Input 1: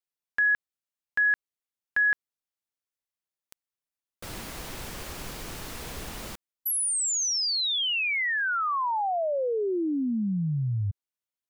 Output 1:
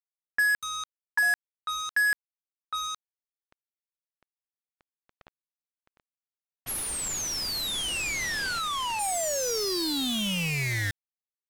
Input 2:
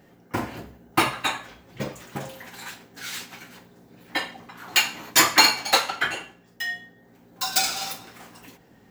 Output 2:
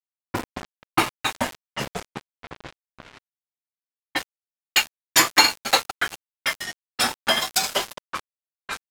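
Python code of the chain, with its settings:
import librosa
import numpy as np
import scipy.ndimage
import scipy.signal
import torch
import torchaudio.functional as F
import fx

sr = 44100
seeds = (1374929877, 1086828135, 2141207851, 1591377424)

y = fx.echo_pitch(x, sr, ms=104, semitones=-5, count=3, db_per_echo=-6.0)
y = fx.transient(y, sr, attack_db=2, sustain_db=-4)
y = np.where(np.abs(y) >= 10.0 ** (-25.5 / 20.0), y, 0.0)
y = fx.env_lowpass(y, sr, base_hz=1800.0, full_db=-23.5)
y = y * 10.0 ** (-1.0 / 20.0)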